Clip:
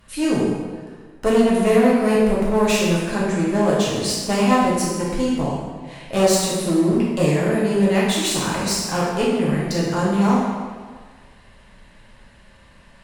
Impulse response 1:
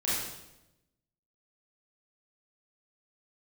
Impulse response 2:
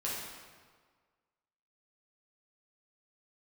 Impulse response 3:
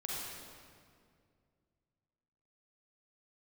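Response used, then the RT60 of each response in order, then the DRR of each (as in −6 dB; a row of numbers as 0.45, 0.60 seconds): 2; 0.95, 1.6, 2.2 seconds; −9.0, −7.0, −5.0 decibels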